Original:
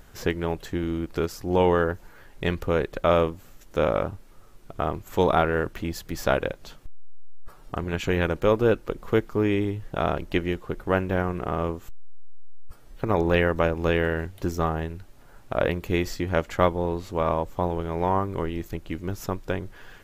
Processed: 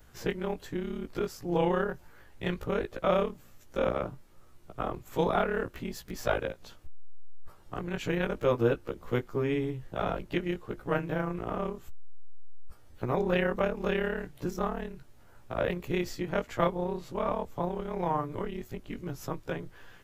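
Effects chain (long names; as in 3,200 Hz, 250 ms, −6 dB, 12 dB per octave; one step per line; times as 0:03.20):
every overlapping window played backwards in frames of 34 ms
level −3 dB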